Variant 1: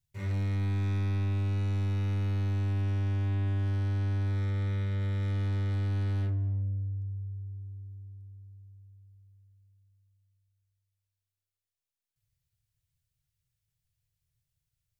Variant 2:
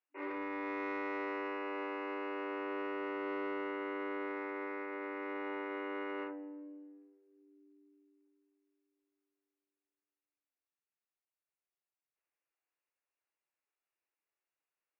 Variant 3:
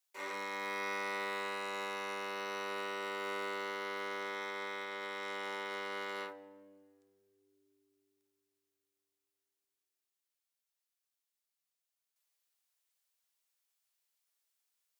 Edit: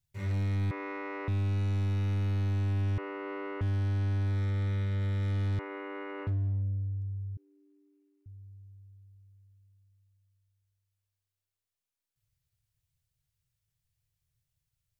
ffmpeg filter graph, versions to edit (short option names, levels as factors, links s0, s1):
-filter_complex "[1:a]asplit=4[s0][s1][s2][s3];[0:a]asplit=5[s4][s5][s6][s7][s8];[s4]atrim=end=0.712[s9];[s0]atrim=start=0.708:end=1.282[s10];[s5]atrim=start=1.278:end=2.982[s11];[s1]atrim=start=2.978:end=3.612[s12];[s6]atrim=start=3.608:end=5.592[s13];[s2]atrim=start=5.588:end=6.272[s14];[s7]atrim=start=6.268:end=7.372[s15];[s3]atrim=start=7.368:end=8.262[s16];[s8]atrim=start=8.258[s17];[s9][s10]acrossfade=d=0.004:c1=hsin:c2=hsin[s18];[s18][s11]acrossfade=d=0.004:c1=hsin:c2=hsin[s19];[s19][s12]acrossfade=d=0.004:c1=hsin:c2=hsin[s20];[s20][s13]acrossfade=d=0.004:c1=hsin:c2=hsin[s21];[s21][s14]acrossfade=d=0.004:c1=hsin:c2=hsin[s22];[s22][s15]acrossfade=d=0.004:c1=hsin:c2=hsin[s23];[s23][s16]acrossfade=d=0.004:c1=hsin:c2=hsin[s24];[s24][s17]acrossfade=d=0.004:c1=hsin:c2=hsin"